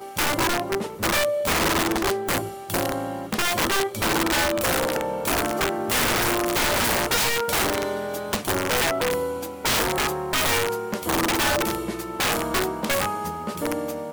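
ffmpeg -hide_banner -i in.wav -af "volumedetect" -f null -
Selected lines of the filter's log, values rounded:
mean_volume: -24.1 dB
max_volume: -16.7 dB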